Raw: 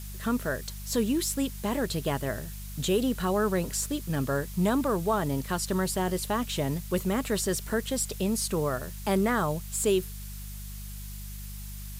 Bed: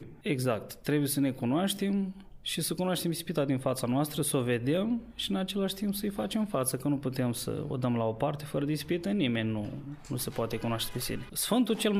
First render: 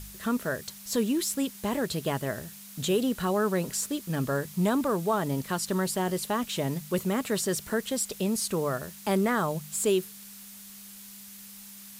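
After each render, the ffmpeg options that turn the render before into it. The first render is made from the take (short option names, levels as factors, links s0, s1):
-af "bandreject=f=50:t=h:w=4,bandreject=f=100:t=h:w=4,bandreject=f=150:t=h:w=4"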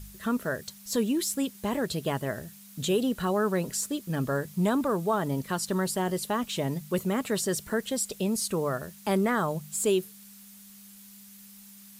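-af "afftdn=nr=6:nf=-47"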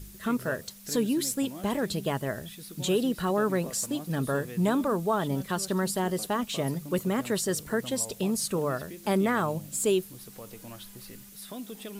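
-filter_complex "[1:a]volume=0.211[s0];[0:a][s0]amix=inputs=2:normalize=0"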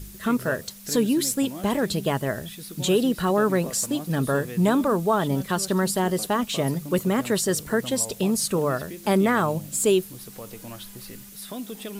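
-af "volume=1.78"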